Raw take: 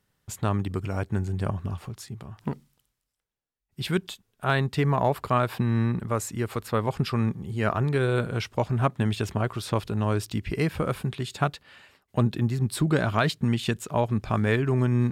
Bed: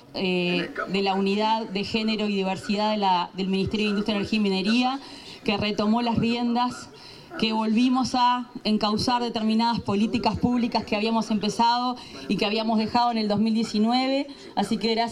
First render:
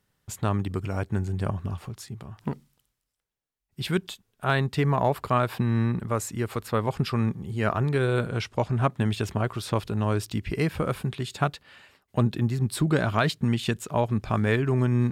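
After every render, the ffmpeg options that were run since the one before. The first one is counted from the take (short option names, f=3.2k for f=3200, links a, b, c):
-filter_complex "[0:a]asettb=1/sr,asplit=3[a][b][c];[a]atrim=end=8.284[d];[b]atrim=start=8.28:end=8.88,asetpts=PTS-STARTPTS,afade=t=in:d=0.004:c=qsin,afade=t=out:st=0.596:d=0.004:c=qsin,lowpass=11k[e];[c]atrim=start=8.876[f];[d][e]acrossfade=d=0.004:c1=hsin:c2=qsin[g];[g][f]acrossfade=d=0.004:c1=qsin:c2=hsin"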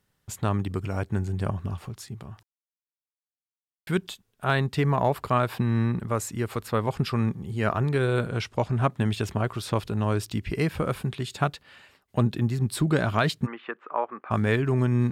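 -filter_complex "[0:a]asplit=3[a][b][c];[a]afade=t=out:st=13.45:d=0.02[d];[b]highpass=f=370:w=0.5412,highpass=f=370:w=1.3066,equalizer=f=410:t=q:w=4:g=-6,equalizer=f=640:t=q:w=4:g=-5,equalizer=f=1.2k:t=q:w=4:g=9,lowpass=f=2k:w=0.5412,lowpass=f=2k:w=1.3066,afade=t=in:st=13.45:d=0.02,afade=t=out:st=14.3:d=0.02[e];[c]afade=t=in:st=14.3:d=0.02[f];[d][e][f]amix=inputs=3:normalize=0,asplit=3[g][h][i];[g]atrim=end=2.43,asetpts=PTS-STARTPTS,afade=t=out:st=2.426:d=0.004:c=hsin[j];[h]atrim=start=2.43:end=3.87,asetpts=PTS-STARTPTS,volume=0[k];[i]atrim=start=3.87,asetpts=PTS-STARTPTS,afade=t=in:d=0.004:c=hsin[l];[j][k][l]concat=n=3:v=0:a=1"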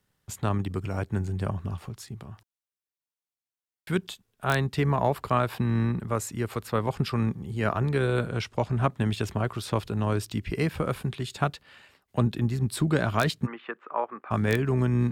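-filter_complex "[0:a]tremolo=f=68:d=0.261,acrossover=split=240|1200|3800[a][b][c][d];[c]aeval=exprs='(mod(8.91*val(0)+1,2)-1)/8.91':c=same[e];[a][b][e][d]amix=inputs=4:normalize=0"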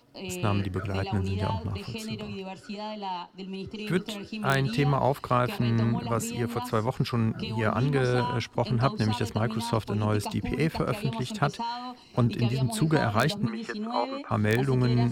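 -filter_complex "[1:a]volume=-12dB[a];[0:a][a]amix=inputs=2:normalize=0"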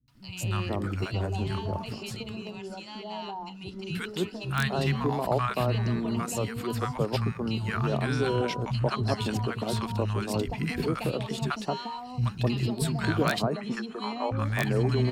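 -filter_complex "[0:a]acrossover=split=180|970[a][b][c];[c]adelay=80[d];[b]adelay=260[e];[a][e][d]amix=inputs=3:normalize=0"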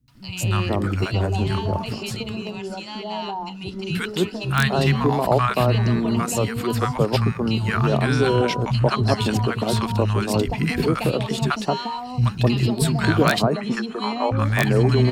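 -af "volume=8dB"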